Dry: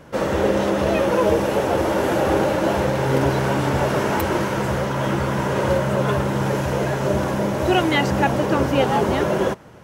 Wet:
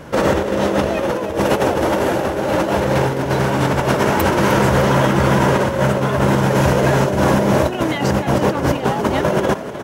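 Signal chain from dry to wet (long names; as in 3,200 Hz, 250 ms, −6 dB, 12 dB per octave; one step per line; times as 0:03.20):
compressor whose output falls as the input rises −22 dBFS, ratio −0.5
on a send: echo with shifted repeats 305 ms, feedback 53%, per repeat +46 Hz, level −13 dB
on the sum: level +6 dB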